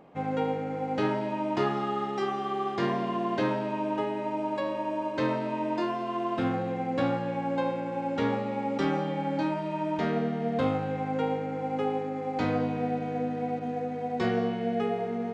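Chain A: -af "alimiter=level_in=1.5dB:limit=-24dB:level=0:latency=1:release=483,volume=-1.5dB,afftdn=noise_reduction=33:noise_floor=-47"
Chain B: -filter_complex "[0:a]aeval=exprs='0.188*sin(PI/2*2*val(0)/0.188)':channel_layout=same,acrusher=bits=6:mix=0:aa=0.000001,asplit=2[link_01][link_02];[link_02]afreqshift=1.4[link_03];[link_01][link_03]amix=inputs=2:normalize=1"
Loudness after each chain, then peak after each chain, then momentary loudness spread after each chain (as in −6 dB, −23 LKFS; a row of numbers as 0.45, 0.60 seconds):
−35.5, −24.5 LKFS; −25.0, −12.0 dBFS; 1, 3 LU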